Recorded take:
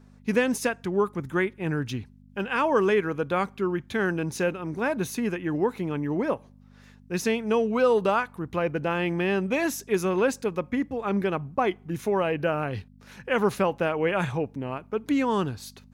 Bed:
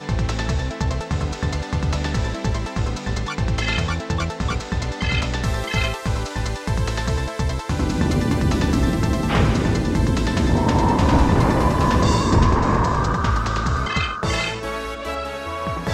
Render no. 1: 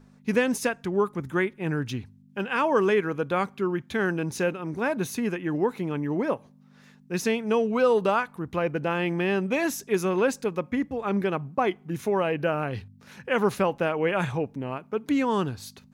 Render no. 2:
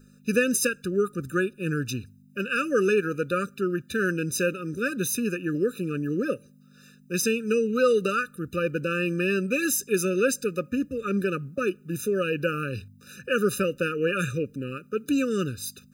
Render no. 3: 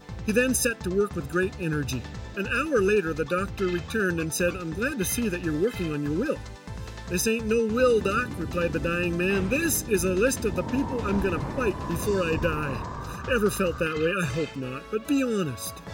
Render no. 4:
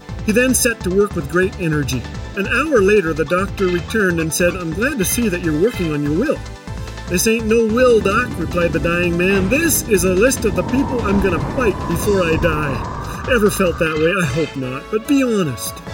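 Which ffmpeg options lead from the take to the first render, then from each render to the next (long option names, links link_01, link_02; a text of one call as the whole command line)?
ffmpeg -i in.wav -af "bandreject=frequency=50:width_type=h:width=4,bandreject=frequency=100:width_type=h:width=4" out.wav
ffmpeg -i in.wav -af "crystalizer=i=3:c=0,afftfilt=real='re*eq(mod(floor(b*sr/1024/590),2),0)':imag='im*eq(mod(floor(b*sr/1024/590),2),0)':win_size=1024:overlap=0.75" out.wav
ffmpeg -i in.wav -i bed.wav -filter_complex "[1:a]volume=-15.5dB[link_01];[0:a][link_01]amix=inputs=2:normalize=0" out.wav
ffmpeg -i in.wav -af "volume=9.5dB,alimiter=limit=-3dB:level=0:latency=1" out.wav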